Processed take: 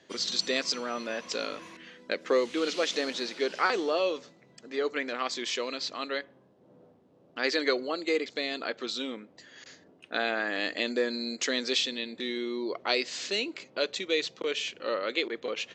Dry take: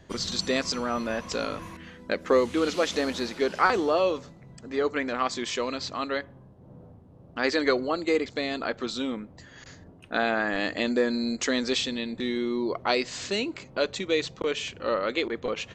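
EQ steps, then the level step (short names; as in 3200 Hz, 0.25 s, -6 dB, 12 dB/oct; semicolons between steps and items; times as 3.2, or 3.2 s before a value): BPF 410–6000 Hz; bell 950 Hz -9.5 dB 1.9 oct; +3.0 dB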